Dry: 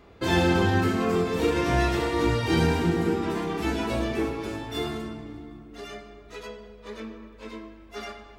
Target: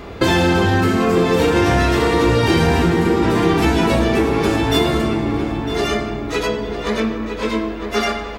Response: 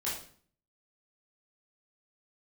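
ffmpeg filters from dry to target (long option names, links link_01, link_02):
-filter_complex "[0:a]apsyclip=17.5dB,acompressor=threshold=-15dB:ratio=6,asplit=2[link_01][link_02];[link_02]adelay=955,lowpass=frequency=2700:poles=1,volume=-7dB,asplit=2[link_03][link_04];[link_04]adelay=955,lowpass=frequency=2700:poles=1,volume=0.41,asplit=2[link_05][link_06];[link_06]adelay=955,lowpass=frequency=2700:poles=1,volume=0.41,asplit=2[link_07][link_08];[link_08]adelay=955,lowpass=frequency=2700:poles=1,volume=0.41,asplit=2[link_09][link_10];[link_10]adelay=955,lowpass=frequency=2700:poles=1,volume=0.41[link_11];[link_01][link_03][link_05][link_07][link_09][link_11]amix=inputs=6:normalize=0,volume=1.5dB"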